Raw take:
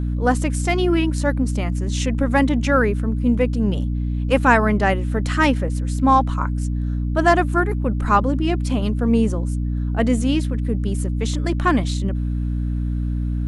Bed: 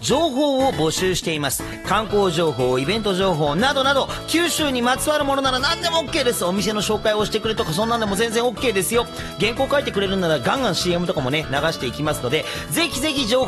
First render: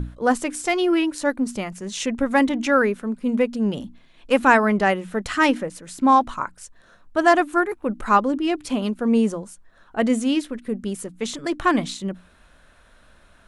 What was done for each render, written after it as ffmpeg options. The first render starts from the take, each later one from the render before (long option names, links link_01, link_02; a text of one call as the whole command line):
ffmpeg -i in.wav -af "bandreject=frequency=60:width_type=h:width=6,bandreject=frequency=120:width_type=h:width=6,bandreject=frequency=180:width_type=h:width=6,bandreject=frequency=240:width_type=h:width=6,bandreject=frequency=300:width_type=h:width=6" out.wav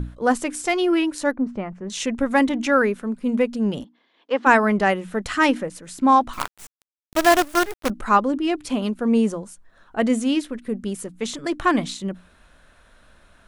ffmpeg -i in.wav -filter_complex "[0:a]asettb=1/sr,asplit=3[link_01][link_02][link_03];[link_01]atrim=end=1.314[link_04];[link_02]atrim=start=1.31:end=1.9,asetpts=PTS-STARTPTS,afade=type=in:duration=0.004:curve=qsin,afade=type=out:start_time=0.586:duration=0.004:curve=qsin,lowpass=1500[link_05];[link_03]atrim=start=1.896[link_06];[link_04][link_05]acrossfade=duration=0.004:curve1=hsin:curve2=qsin[link_07];[link_07][link_06]acrossfade=duration=0.004:curve1=qsin:curve2=hsin,asplit=3[link_08][link_09][link_10];[link_08]afade=type=out:start_time=3.83:duration=0.02[link_11];[link_09]highpass=frequency=310:width=0.5412,highpass=frequency=310:width=1.3066,equalizer=frequency=350:width_type=q:width=4:gain=-4,equalizer=frequency=630:width_type=q:width=4:gain=-7,equalizer=frequency=1400:width_type=q:width=4:gain=-6,equalizer=frequency=2500:width_type=q:width=4:gain=-10,equalizer=frequency=4000:width_type=q:width=4:gain=-6,lowpass=frequency=4500:width=0.5412,lowpass=frequency=4500:width=1.3066,afade=type=in:start_time=3.83:duration=0.02,afade=type=out:start_time=4.45:duration=0.02[link_12];[link_10]afade=type=in:start_time=4.45:duration=0.02[link_13];[link_11][link_12][link_13]amix=inputs=3:normalize=0,asettb=1/sr,asplit=3[link_14][link_15][link_16];[link_14]atrim=end=6.334[link_17];[link_15]atrim=start=6.33:end=7.9,asetpts=PTS-STARTPTS,afade=type=in:duration=0.004:curve=qsin,afade=type=out:start_time=1.566:duration=0.004:curve=qsin,acrusher=bits=4:dc=4:mix=0:aa=0.000001[link_18];[link_16]atrim=start=7.896[link_19];[link_17][link_18]acrossfade=duration=0.004:curve1=hsin:curve2=qsin[link_20];[link_20][link_19]acrossfade=duration=0.004:curve1=qsin:curve2=hsin" out.wav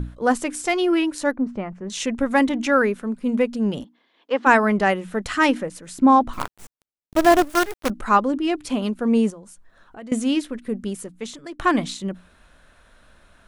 ffmpeg -i in.wav -filter_complex "[0:a]asettb=1/sr,asplit=3[link_01][link_02][link_03];[link_01]atrim=end=5.984[link_04];[link_02]atrim=start=5.98:end=7.5,asetpts=PTS-STARTPTS,afade=type=in:duration=0.004:curve=qsin,afade=type=out:start_time=1.516:duration=0.004:curve=qsin,tiltshelf=frequency=870:gain=5[link_05];[link_03]atrim=start=7.496[link_06];[link_04][link_05]acrossfade=duration=0.004:curve1=hsin:curve2=qsin[link_07];[link_07][link_06]acrossfade=duration=0.004:curve1=qsin:curve2=hsin,asettb=1/sr,asplit=3[link_08][link_09][link_10];[link_08]atrim=end=9.304[link_11];[link_09]atrim=start=9.3:end=10.12,asetpts=PTS-STARTPTS,afade=type=in:duration=0.004:curve=qsin,afade=type=out:start_time=0.816:duration=0.004:curve=qsin,acompressor=threshold=-41dB:ratio=3:attack=3.2:release=140:knee=1:detection=peak[link_12];[link_10]atrim=start=10.116[link_13];[link_11][link_12]acrossfade=duration=0.004:curve1=hsin:curve2=qsin[link_14];[link_14][link_13]acrossfade=duration=0.004:curve1=qsin:curve2=hsin,asplit=2[link_15][link_16];[link_15]atrim=end=11.59,asetpts=PTS-STARTPTS,afade=type=out:start_time=10.84:duration=0.75:silence=0.188365[link_17];[link_16]atrim=start=11.59,asetpts=PTS-STARTPTS,afade=type=in:duration=0.004:curve=hsin:silence=0.188365[link_18];[link_17][link_18]concat=n=2:v=0:a=1" out.wav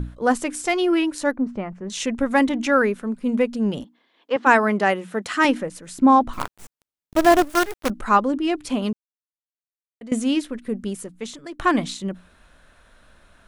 ffmpeg -i in.wav -filter_complex "[0:a]asettb=1/sr,asplit=3[link_01][link_02][link_03];[link_01]atrim=end=4.364[link_04];[link_02]atrim=start=4.36:end=5.45,asetpts=PTS-STARTPTS,afade=type=in:duration=0.004:curve=qsin,afade=type=out:start_time=1.086:duration=0.004:curve=qsin,highpass=190[link_05];[link_03]atrim=start=5.446[link_06];[link_04][link_05]acrossfade=duration=0.004:curve1=hsin:curve2=qsin[link_07];[link_07][link_06]acrossfade=duration=0.004:curve1=qsin:curve2=hsin,asplit=3[link_08][link_09][link_10];[link_08]atrim=end=8.93,asetpts=PTS-STARTPTS,afade=type=out:start_time=8.926:duration=0.004:curve=hsin[link_11];[link_09]atrim=start=8.93:end=10.01,asetpts=PTS-STARTPTS,volume=0[link_12];[link_10]atrim=start=10.01,asetpts=PTS-STARTPTS,afade=type=in:duration=0.004:curve=hsin[link_13];[link_11][link_12][link_13]concat=n=3:v=0:a=1" out.wav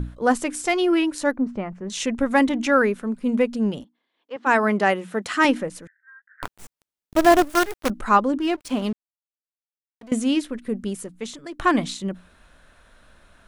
ffmpeg -i in.wav -filter_complex "[0:a]asettb=1/sr,asplit=3[link_01][link_02][link_03];[link_01]atrim=end=5.874[link_04];[link_02]atrim=start=5.87:end=6.43,asetpts=PTS-STARTPTS,afade=type=in:duration=0.004:curve=qsin,afade=type=out:start_time=0.556:duration=0.004:curve=qsin,asuperpass=centerf=1700:order=8:qfactor=4.3[link_05];[link_03]atrim=start=6.426[link_06];[link_04][link_05]acrossfade=duration=0.004:curve1=hsin:curve2=qsin[link_07];[link_07][link_06]acrossfade=duration=0.004:curve1=qsin:curve2=hsin,asettb=1/sr,asplit=3[link_08][link_09][link_10];[link_08]atrim=end=8.404[link_11];[link_09]atrim=start=8.4:end=10.13,asetpts=PTS-STARTPTS,afade=type=in:duration=0.004:curve=qsin,afade=type=out:start_time=1.726:duration=0.004:curve=qsin,aeval=exprs='sgn(val(0))*max(abs(val(0))-0.00891,0)':channel_layout=same[link_12];[link_10]atrim=start=10.126[link_13];[link_11][link_12]acrossfade=duration=0.004:curve1=hsin:curve2=qsin[link_14];[link_14][link_13]acrossfade=duration=0.004:curve1=qsin:curve2=hsin,asplit=3[link_15][link_16][link_17];[link_15]atrim=end=3.92,asetpts=PTS-STARTPTS,afade=type=out:start_time=3.64:duration=0.28:silence=0.266073[link_18];[link_16]atrim=start=3.92:end=4.37,asetpts=PTS-STARTPTS,volume=-11.5dB[link_19];[link_17]atrim=start=4.37,asetpts=PTS-STARTPTS,afade=type=in:duration=0.28:silence=0.266073[link_20];[link_18][link_19][link_20]concat=n=3:v=0:a=1" out.wav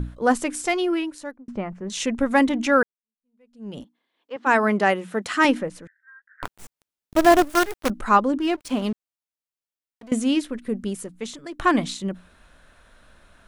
ffmpeg -i in.wav -filter_complex "[0:a]asettb=1/sr,asplit=3[link_01][link_02][link_03];[link_01]atrim=end=5.594[link_04];[link_02]atrim=start=5.59:end=6.45,asetpts=PTS-STARTPTS,afade=type=in:duration=0.004:curve=qsin,afade=type=out:start_time=0.856:duration=0.004:curve=qsin,highshelf=frequency=5500:gain=-8[link_05];[link_03]atrim=start=6.446[link_06];[link_04][link_05]acrossfade=duration=0.004:curve1=hsin:curve2=qsin[link_07];[link_07][link_06]acrossfade=duration=0.004:curve1=qsin:curve2=hsin,asplit=3[link_08][link_09][link_10];[link_08]atrim=end=1.48,asetpts=PTS-STARTPTS,afade=type=out:start_time=0.6:duration=0.88[link_11];[link_09]atrim=start=1.48:end=2.83,asetpts=PTS-STARTPTS,afade=type=in:duration=0.004:curve=hsin,afade=type=out:start_time=1.346:duration=0.004:curve=hsin[link_12];[link_10]atrim=start=2.83,asetpts=PTS-STARTPTS,afade=type=in:duration=0.96:curve=exp[link_13];[link_11][link_12][link_13]concat=n=3:v=0:a=1" out.wav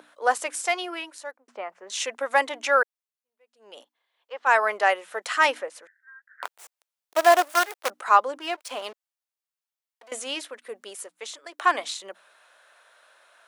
ffmpeg -i in.wav -af "highpass=frequency=540:width=0.5412,highpass=frequency=540:width=1.3066" out.wav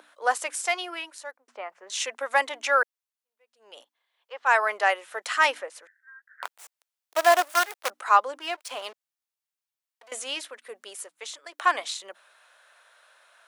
ffmpeg -i in.wav -af "highpass=frequency=600:poles=1" out.wav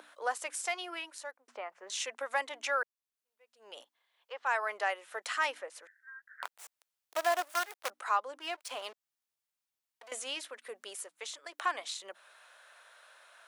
ffmpeg -i in.wav -af "acompressor=threshold=-46dB:ratio=1.5" out.wav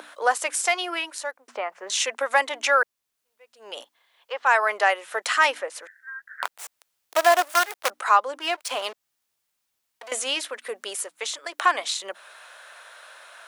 ffmpeg -i in.wav -af "volume=12dB" out.wav